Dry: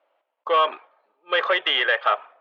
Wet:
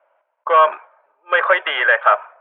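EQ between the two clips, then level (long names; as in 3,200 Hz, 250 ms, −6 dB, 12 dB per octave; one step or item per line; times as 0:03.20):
high-frequency loss of the air 240 metres
loudspeaker in its box 410–3,100 Hz, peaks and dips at 610 Hz +7 dB, 970 Hz +8 dB, 1,500 Hz +10 dB, 2,300 Hz +4 dB
+2.5 dB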